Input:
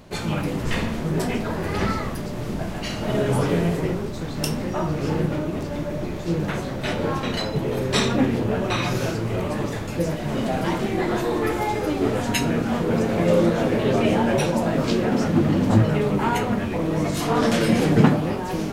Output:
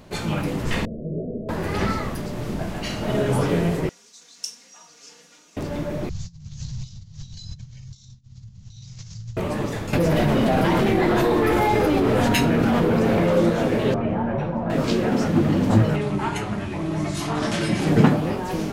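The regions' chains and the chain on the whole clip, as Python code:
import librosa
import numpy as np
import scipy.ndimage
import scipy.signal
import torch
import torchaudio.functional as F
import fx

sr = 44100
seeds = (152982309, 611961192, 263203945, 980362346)

y = fx.chain(x, sr, fx.cheby_ripple(hz=650.0, ripple_db=3),
    fx.low_shelf(hz=320.0, db=-6.0), at=(0.85, 1.49))
y = fx.chain(y, sr, fx.bandpass_q(hz=6300.0, q=2.9),
    fx.comb(ms=4.2, depth=0.85), at=(3.89, 5.57))
y = fx.chain(y, sr, fx.over_compress(threshold_db=-29.0, ratio=-0.5),
    fx.cheby2_bandstop(low_hz=310.0, high_hz=2100.0, order=4, stop_db=50),
    fx.resample_bad(factor=3, down='none', up='filtered'), at=(6.09, 9.37))
y = fx.chain(y, sr, fx.peak_eq(hz=7300.0, db=-6.0, octaves=1.1),
    fx.overload_stage(gain_db=16.5),
    fx.env_flatten(amount_pct=100), at=(9.93, 13.37))
y = fx.chain(y, sr, fx.lowpass(hz=1200.0, slope=12),
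    fx.peak_eq(hz=400.0, db=-7.5, octaves=1.5), at=(13.94, 14.7))
y = fx.chain(y, sr, fx.ellip_lowpass(hz=11000.0, order=4, stop_db=50),
    fx.peak_eq(hz=490.0, db=-12.5, octaves=0.24),
    fx.notch_comb(f0_hz=240.0), at=(15.96, 17.87))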